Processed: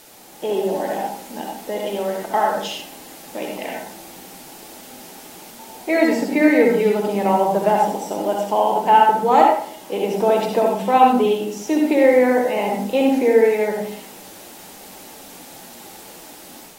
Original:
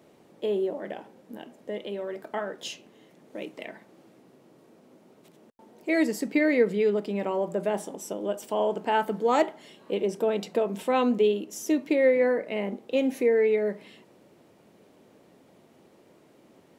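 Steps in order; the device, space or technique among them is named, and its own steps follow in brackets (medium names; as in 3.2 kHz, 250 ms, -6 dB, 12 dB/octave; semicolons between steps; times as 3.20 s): filmed off a television (band-pass 170–6600 Hz; peaking EQ 840 Hz +12 dB 0.51 oct; reverberation RT60 0.60 s, pre-delay 58 ms, DRR 0 dB; white noise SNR 24 dB; level rider gain up to 5 dB; AAC 48 kbps 44.1 kHz)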